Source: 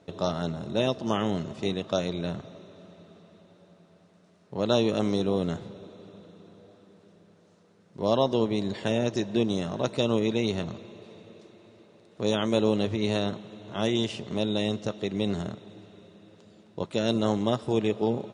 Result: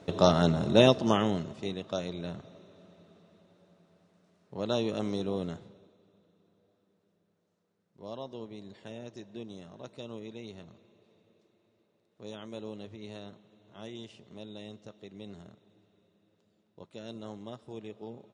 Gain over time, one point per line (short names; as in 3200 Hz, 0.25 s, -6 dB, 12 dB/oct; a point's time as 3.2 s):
0.85 s +6 dB
1.63 s -6.5 dB
5.44 s -6.5 dB
5.99 s -17.5 dB